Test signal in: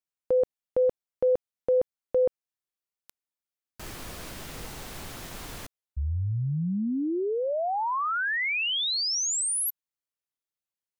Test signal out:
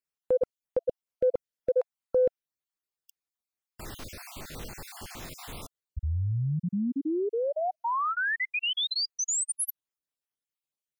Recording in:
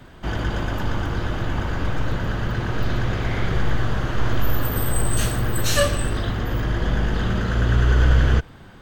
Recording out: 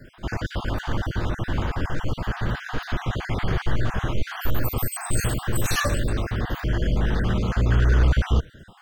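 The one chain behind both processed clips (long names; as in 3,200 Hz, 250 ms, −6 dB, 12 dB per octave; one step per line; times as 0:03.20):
time-frequency cells dropped at random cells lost 38%
soft clipping −8 dBFS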